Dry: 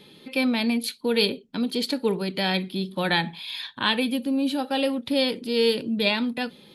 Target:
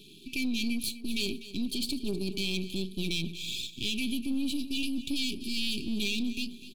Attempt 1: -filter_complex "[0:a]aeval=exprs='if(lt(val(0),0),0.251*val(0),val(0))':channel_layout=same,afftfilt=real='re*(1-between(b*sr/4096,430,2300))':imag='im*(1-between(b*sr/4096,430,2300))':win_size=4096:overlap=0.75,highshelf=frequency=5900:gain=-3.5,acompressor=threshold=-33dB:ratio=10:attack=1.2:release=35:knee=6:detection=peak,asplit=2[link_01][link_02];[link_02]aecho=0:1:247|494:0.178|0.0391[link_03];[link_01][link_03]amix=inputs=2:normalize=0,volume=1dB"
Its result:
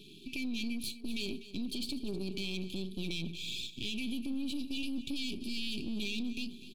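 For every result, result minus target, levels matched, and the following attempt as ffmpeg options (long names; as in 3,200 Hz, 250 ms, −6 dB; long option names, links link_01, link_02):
downward compressor: peak gain reduction +5 dB; 8,000 Hz band −3.0 dB
-filter_complex "[0:a]aeval=exprs='if(lt(val(0),0),0.251*val(0),val(0))':channel_layout=same,afftfilt=real='re*(1-between(b*sr/4096,430,2300))':imag='im*(1-between(b*sr/4096,430,2300))':win_size=4096:overlap=0.75,highshelf=frequency=5900:gain=-3.5,acompressor=threshold=-26dB:ratio=10:attack=1.2:release=35:knee=6:detection=peak,asplit=2[link_01][link_02];[link_02]aecho=0:1:247|494:0.178|0.0391[link_03];[link_01][link_03]amix=inputs=2:normalize=0,volume=1dB"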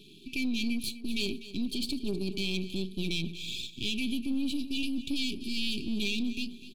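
8,000 Hz band −3.5 dB
-filter_complex "[0:a]aeval=exprs='if(lt(val(0),0),0.251*val(0),val(0))':channel_layout=same,afftfilt=real='re*(1-between(b*sr/4096,430,2300))':imag='im*(1-between(b*sr/4096,430,2300))':win_size=4096:overlap=0.75,highshelf=frequency=5900:gain=4,acompressor=threshold=-26dB:ratio=10:attack=1.2:release=35:knee=6:detection=peak,asplit=2[link_01][link_02];[link_02]aecho=0:1:247|494:0.178|0.0391[link_03];[link_01][link_03]amix=inputs=2:normalize=0,volume=1dB"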